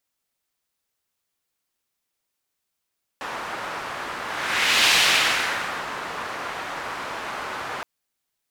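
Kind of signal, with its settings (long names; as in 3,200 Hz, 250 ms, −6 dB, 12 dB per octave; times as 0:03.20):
pass-by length 4.62 s, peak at 0:01.70, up 0.74 s, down 1.05 s, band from 1,200 Hz, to 3,000 Hz, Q 1.2, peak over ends 14.5 dB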